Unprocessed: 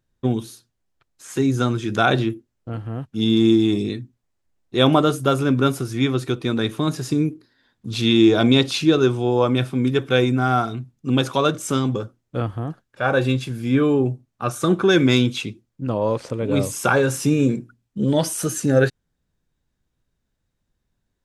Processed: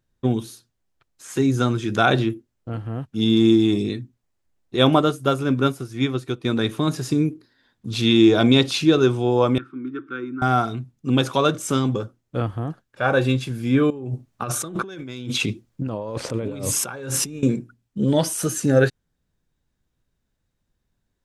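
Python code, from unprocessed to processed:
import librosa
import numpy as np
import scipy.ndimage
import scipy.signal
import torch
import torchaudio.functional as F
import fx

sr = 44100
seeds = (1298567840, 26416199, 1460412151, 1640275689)

y = fx.upward_expand(x, sr, threshold_db=-34.0, expansion=1.5, at=(4.76, 6.45))
y = fx.double_bandpass(y, sr, hz=640.0, octaves=2.1, at=(9.58, 10.42))
y = fx.over_compress(y, sr, threshold_db=-29.0, ratio=-1.0, at=(13.9, 17.43))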